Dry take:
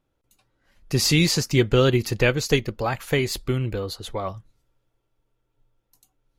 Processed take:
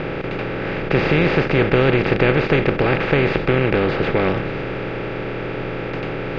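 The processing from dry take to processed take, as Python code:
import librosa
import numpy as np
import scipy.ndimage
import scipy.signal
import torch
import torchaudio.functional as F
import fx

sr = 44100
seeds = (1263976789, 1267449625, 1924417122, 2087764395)

y = fx.bin_compress(x, sr, power=0.2)
y = scipy.signal.sosfilt(scipy.signal.butter(4, 2700.0, 'lowpass', fs=sr, output='sos'), y)
y = y * librosa.db_to_amplitude(-2.5)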